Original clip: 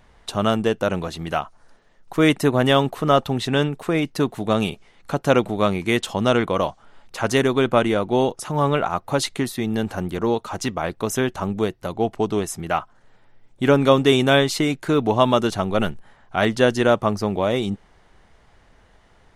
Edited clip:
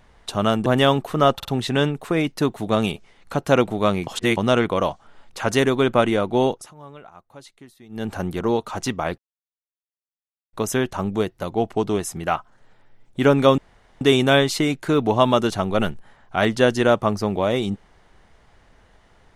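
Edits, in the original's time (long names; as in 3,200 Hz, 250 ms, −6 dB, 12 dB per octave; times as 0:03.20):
0:00.66–0:02.54: remove
0:03.23: stutter 0.05 s, 3 plays
0:05.85–0:06.15: reverse
0:08.27–0:09.91: duck −22 dB, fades 0.24 s
0:10.96: splice in silence 1.35 s
0:14.01: splice in room tone 0.43 s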